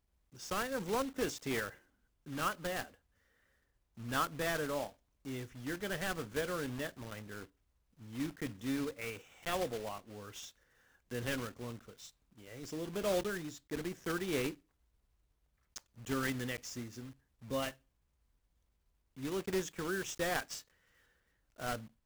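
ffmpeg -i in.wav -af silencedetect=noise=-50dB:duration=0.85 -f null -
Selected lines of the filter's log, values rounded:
silence_start: 2.90
silence_end: 3.97 | silence_duration: 1.07
silence_start: 14.55
silence_end: 15.76 | silence_duration: 1.21
silence_start: 17.73
silence_end: 19.17 | silence_duration: 1.44
silence_start: 20.62
silence_end: 21.58 | silence_duration: 0.97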